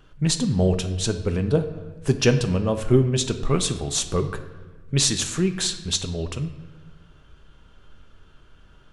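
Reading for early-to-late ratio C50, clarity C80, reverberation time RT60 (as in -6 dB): 10.5 dB, 12.5 dB, 1.4 s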